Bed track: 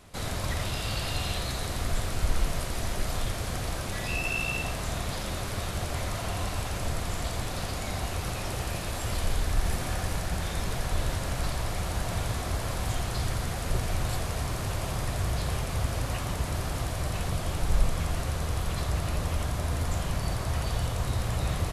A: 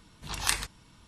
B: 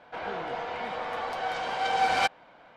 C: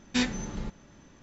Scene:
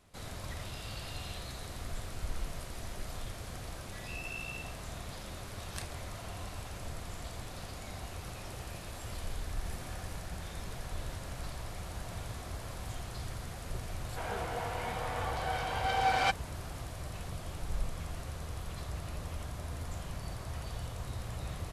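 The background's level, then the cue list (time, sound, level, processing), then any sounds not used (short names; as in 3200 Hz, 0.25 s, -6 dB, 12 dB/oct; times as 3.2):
bed track -11 dB
5.29 add A -17.5 dB
14.04 add B -4 dB
not used: C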